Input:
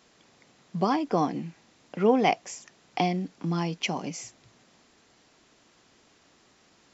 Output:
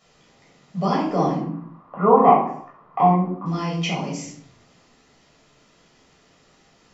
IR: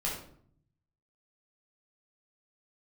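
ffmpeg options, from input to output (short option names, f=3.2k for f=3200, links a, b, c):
-filter_complex "[0:a]asettb=1/sr,asplit=3[a][b][c];[a]atrim=end=1.374[d];[b]atrim=start=1.37:end=3.46,asetpts=PTS-STARTPTS,afade=t=in:d=0.004:c=qsin,afade=t=out:st=2.086:d=0.004:c=qsin,lowpass=f=1.1k:t=q:w=11[e];[c]atrim=start=3.456[f];[d][e]acrossfade=d=0.004:c1=hsin:c2=qsin[g];[g][f]acrossfade=d=0.004:c1=qsin:c2=hsin[h];[1:a]atrim=start_sample=2205,afade=t=out:st=0.44:d=0.01,atrim=end_sample=19845[i];[h][i]afir=irnorm=-1:irlink=0,volume=-1dB"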